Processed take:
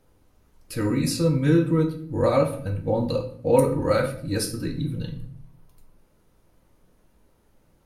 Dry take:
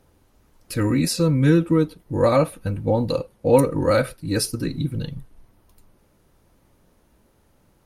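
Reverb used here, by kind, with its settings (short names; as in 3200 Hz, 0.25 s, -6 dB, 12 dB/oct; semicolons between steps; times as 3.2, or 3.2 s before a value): shoebox room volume 81 m³, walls mixed, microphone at 0.52 m; gain -5 dB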